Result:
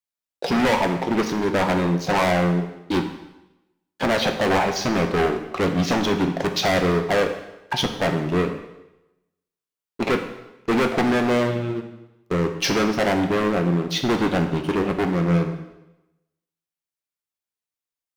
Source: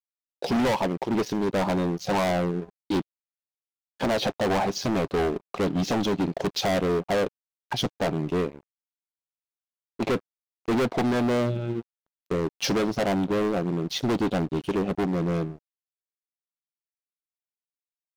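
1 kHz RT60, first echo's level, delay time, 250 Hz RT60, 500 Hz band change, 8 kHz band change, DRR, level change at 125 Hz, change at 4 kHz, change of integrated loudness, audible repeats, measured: 0.95 s, none, none, 0.95 s, +4.0 dB, +4.5 dB, 4.5 dB, +5.0 dB, +5.5 dB, +4.5 dB, none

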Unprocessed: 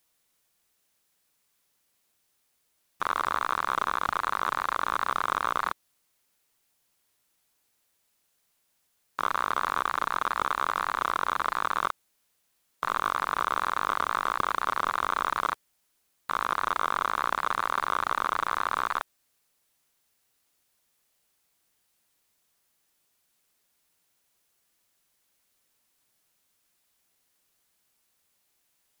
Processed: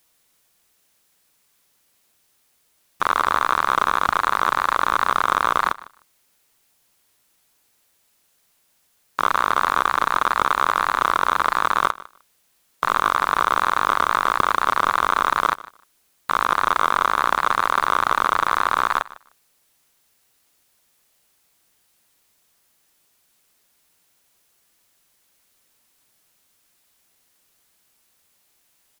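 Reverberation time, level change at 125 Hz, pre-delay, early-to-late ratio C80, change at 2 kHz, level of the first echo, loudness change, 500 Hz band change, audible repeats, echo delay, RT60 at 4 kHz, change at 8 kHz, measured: none, +8.5 dB, none, none, +8.5 dB, -19.5 dB, +8.5 dB, +8.5 dB, 1, 0.152 s, none, +8.5 dB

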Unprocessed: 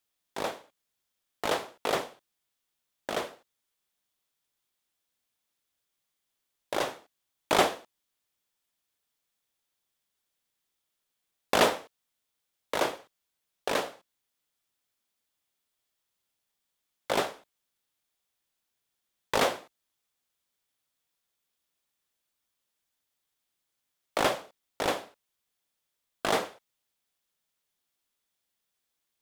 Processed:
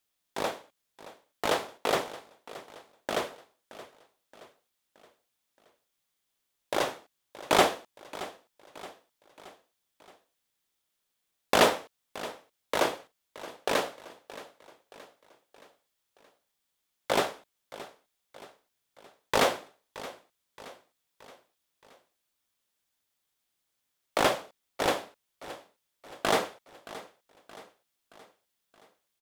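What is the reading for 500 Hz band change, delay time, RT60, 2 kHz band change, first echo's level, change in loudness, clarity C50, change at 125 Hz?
+1.5 dB, 0.623 s, none, +1.5 dB, -17.0 dB, +0.5 dB, none, +1.5 dB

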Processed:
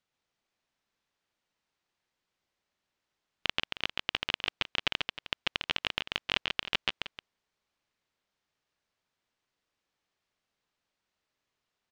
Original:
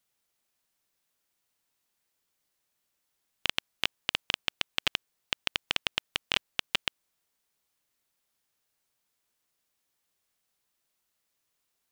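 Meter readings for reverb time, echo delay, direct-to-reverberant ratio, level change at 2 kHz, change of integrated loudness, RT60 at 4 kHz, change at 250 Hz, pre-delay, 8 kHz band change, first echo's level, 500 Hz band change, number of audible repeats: none, 0.139 s, none, 0.0 dB, -1.0 dB, none, +1.5 dB, none, -8.5 dB, -4.0 dB, +1.0 dB, 2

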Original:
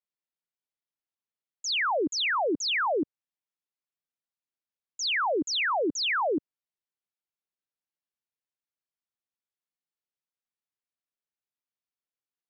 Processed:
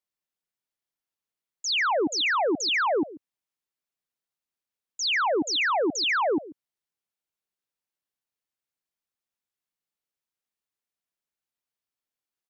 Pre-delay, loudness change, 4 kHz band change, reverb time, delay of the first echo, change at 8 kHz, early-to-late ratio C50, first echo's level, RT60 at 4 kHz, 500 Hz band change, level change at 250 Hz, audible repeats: none, +2.5 dB, +2.5 dB, none, 0.139 s, n/a, none, -18.0 dB, none, +2.5 dB, +2.5 dB, 1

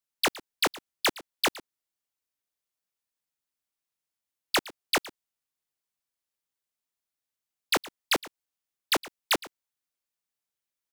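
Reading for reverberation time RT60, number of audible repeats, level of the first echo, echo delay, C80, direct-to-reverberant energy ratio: none, 1, -19.0 dB, 0.114 s, none, none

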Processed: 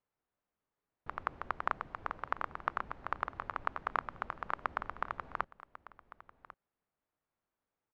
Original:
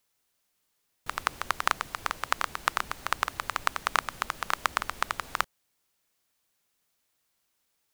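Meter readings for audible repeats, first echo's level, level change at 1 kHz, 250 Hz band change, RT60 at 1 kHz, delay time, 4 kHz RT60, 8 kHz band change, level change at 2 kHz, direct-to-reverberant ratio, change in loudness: 1, -17.0 dB, -6.5 dB, -4.5 dB, none, 1.096 s, none, under -30 dB, -10.0 dB, none, -8.5 dB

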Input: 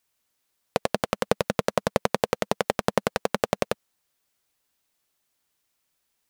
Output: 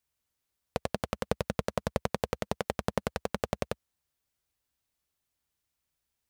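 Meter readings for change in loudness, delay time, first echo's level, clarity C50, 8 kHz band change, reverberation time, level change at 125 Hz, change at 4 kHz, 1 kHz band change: -7.5 dB, none, none, none, -8.5 dB, none, -2.0 dB, -8.5 dB, -8.5 dB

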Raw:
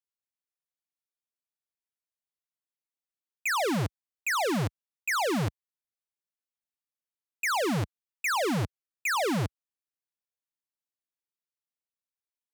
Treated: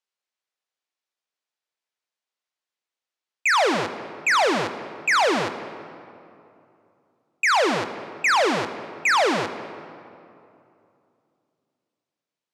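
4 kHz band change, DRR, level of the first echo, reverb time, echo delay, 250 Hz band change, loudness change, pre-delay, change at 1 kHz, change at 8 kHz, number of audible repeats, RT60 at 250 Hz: +8.5 dB, 10.0 dB, none, 2.7 s, none, +2.0 dB, +7.5 dB, 4 ms, +9.5 dB, +4.0 dB, none, 2.9 s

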